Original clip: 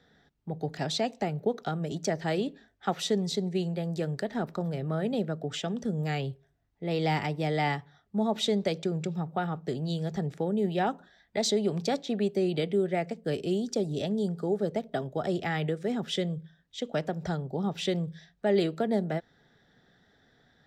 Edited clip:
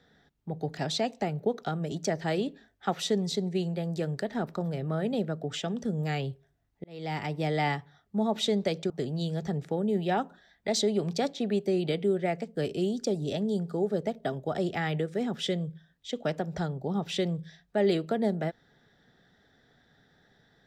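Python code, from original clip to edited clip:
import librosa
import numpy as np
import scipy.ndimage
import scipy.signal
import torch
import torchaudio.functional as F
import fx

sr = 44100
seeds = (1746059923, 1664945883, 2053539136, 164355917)

y = fx.edit(x, sr, fx.fade_in_span(start_s=6.84, length_s=0.55),
    fx.cut(start_s=8.9, length_s=0.69), tone=tone)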